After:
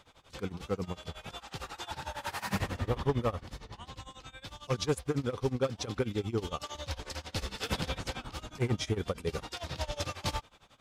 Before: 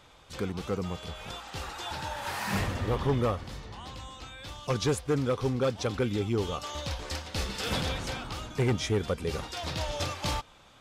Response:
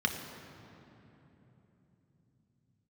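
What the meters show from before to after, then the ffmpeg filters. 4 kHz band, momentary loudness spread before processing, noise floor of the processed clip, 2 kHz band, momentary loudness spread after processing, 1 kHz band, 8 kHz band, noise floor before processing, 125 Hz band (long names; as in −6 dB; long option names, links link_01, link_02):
−4.0 dB, 13 LU, −60 dBFS, −4.0 dB, 14 LU, −4.0 dB, −4.0 dB, −56 dBFS, −3.5 dB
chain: -af "tremolo=f=11:d=0.91"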